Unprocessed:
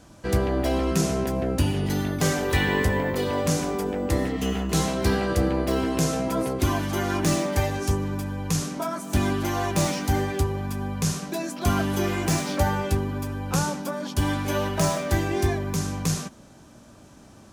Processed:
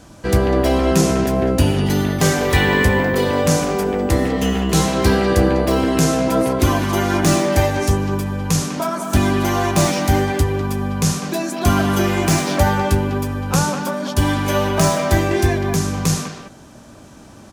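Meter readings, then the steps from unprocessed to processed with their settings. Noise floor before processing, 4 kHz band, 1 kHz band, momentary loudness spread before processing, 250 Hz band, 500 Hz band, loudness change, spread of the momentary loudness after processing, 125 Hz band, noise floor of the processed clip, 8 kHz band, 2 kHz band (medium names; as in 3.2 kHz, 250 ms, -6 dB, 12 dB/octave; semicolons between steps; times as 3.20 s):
-49 dBFS, +7.5 dB, +8.0 dB, 4 LU, +7.5 dB, +8.0 dB, +7.5 dB, 5 LU, +7.0 dB, -42 dBFS, +7.0 dB, +8.0 dB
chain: speakerphone echo 200 ms, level -6 dB; trim +7 dB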